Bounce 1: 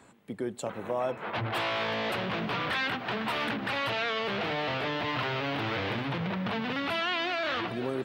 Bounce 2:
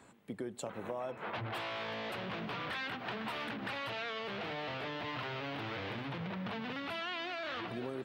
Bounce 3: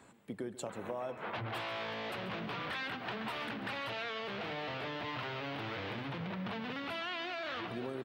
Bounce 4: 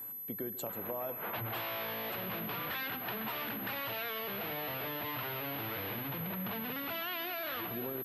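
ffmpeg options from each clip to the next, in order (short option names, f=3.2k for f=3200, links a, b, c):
-af "acompressor=threshold=-33dB:ratio=6,volume=-3dB"
-af "aecho=1:1:138:0.178"
-af "aeval=exprs='val(0)+0.00891*sin(2*PI*12000*n/s)':c=same"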